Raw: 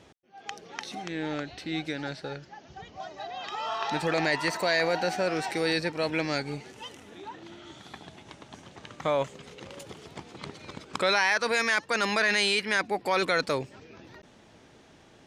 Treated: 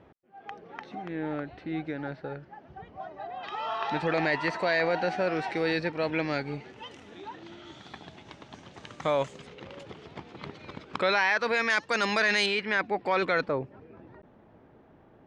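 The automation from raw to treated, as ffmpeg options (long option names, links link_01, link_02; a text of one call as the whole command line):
ffmpeg -i in.wav -af "asetnsamples=nb_out_samples=441:pad=0,asendcmd='3.43 lowpass f 3100;6.91 lowpass f 5300;8.74 lowpass f 9000;9.47 lowpass f 3400;11.7 lowpass f 6300;12.46 lowpass f 2800;13.47 lowpass f 1200',lowpass=1600" out.wav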